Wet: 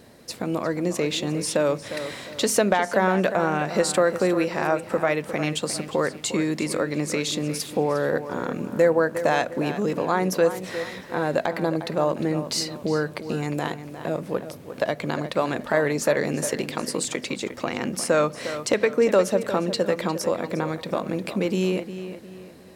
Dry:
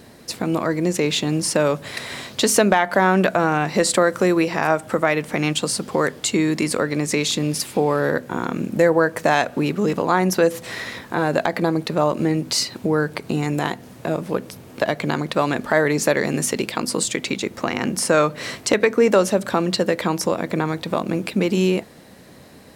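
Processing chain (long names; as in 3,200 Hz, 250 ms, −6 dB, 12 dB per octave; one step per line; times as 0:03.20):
parametric band 540 Hz +4 dB 0.46 octaves
on a send: feedback echo with a low-pass in the loop 355 ms, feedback 39%, low-pass 4,400 Hz, level −11 dB
on the sum: level −5.5 dB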